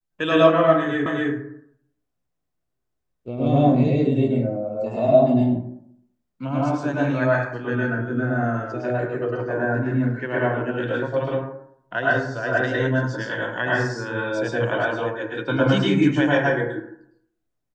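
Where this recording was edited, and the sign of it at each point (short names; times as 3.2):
1.06 repeat of the last 0.26 s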